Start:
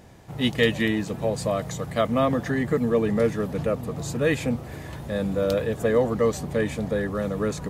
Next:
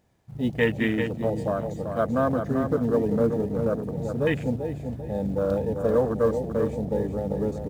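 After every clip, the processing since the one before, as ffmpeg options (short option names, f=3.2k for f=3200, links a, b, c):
-af "acrusher=bits=4:mode=log:mix=0:aa=0.000001,aecho=1:1:388|776|1164|1552:0.473|0.175|0.0648|0.024,afwtdn=0.0447,volume=-1.5dB"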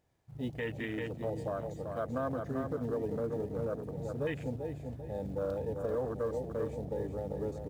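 -af "alimiter=limit=-16.5dB:level=0:latency=1:release=75,equalizer=f=210:t=o:w=0.36:g=-8,volume=-8dB"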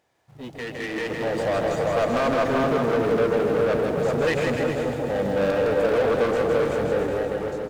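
-filter_complex "[0:a]asplit=2[a][b];[b]highpass=f=720:p=1,volume=23dB,asoftclip=type=tanh:threshold=-23.5dB[c];[a][c]amix=inputs=2:normalize=0,lowpass=f=4.9k:p=1,volume=-6dB,dynaudnorm=f=440:g=5:m=12dB,asplit=2[d][e];[e]aecho=0:1:160|296|411.6|509.9|593.4:0.631|0.398|0.251|0.158|0.1[f];[d][f]amix=inputs=2:normalize=0,volume=-5dB"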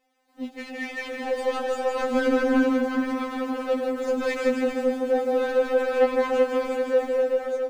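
-af "afftfilt=real='re*3.46*eq(mod(b,12),0)':imag='im*3.46*eq(mod(b,12),0)':win_size=2048:overlap=0.75"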